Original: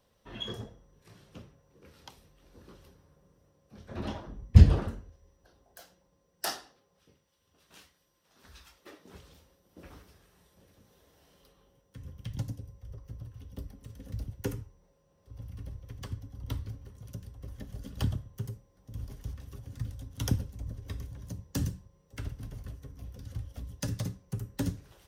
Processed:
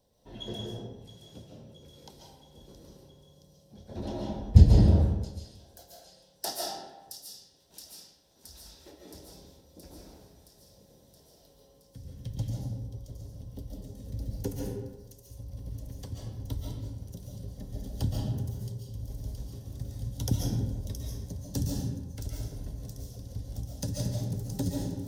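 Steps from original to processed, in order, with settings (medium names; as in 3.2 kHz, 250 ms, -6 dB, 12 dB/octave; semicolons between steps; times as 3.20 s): high-order bell 1.8 kHz -10.5 dB; band-stop 1.2 kHz, Q 7.4; feedback echo behind a high-pass 671 ms, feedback 68%, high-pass 4.4 kHz, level -7.5 dB; algorithmic reverb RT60 1.1 s, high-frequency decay 0.65×, pre-delay 100 ms, DRR -2.5 dB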